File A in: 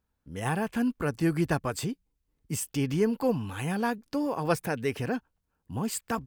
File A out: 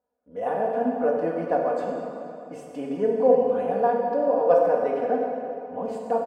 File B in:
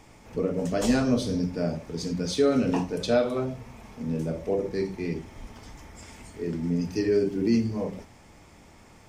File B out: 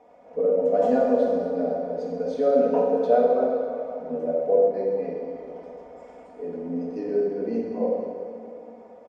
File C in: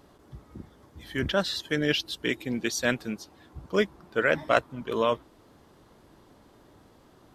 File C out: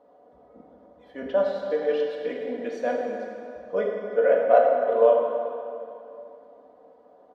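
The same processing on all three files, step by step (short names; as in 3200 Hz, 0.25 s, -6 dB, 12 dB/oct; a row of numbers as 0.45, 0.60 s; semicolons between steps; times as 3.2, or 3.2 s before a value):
band-pass 610 Hz, Q 6; comb 4.1 ms, depth 83%; plate-style reverb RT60 2.8 s, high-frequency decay 0.75×, DRR -1 dB; match loudness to -24 LUFS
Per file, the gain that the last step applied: +12.5, +10.0, +9.0 dB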